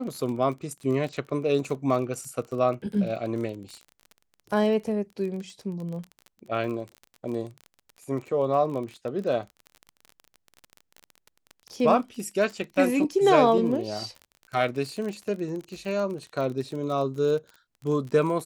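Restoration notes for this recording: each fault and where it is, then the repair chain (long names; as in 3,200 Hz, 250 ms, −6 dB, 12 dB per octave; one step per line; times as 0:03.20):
surface crackle 34 per second −33 dBFS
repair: click removal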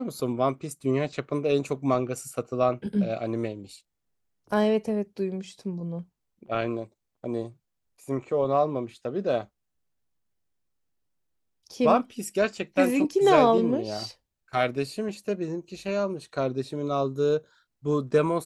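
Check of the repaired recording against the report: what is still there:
none of them is left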